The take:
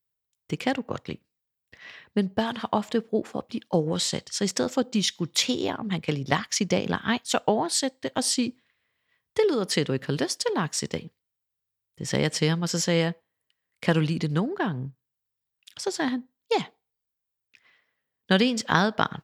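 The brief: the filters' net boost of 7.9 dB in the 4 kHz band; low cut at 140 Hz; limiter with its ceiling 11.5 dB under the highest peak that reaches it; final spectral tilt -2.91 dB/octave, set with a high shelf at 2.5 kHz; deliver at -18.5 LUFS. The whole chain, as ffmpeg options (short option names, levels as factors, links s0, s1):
-af "highpass=140,highshelf=f=2500:g=4.5,equalizer=f=4000:t=o:g=6,volume=2.24,alimiter=limit=0.631:level=0:latency=1"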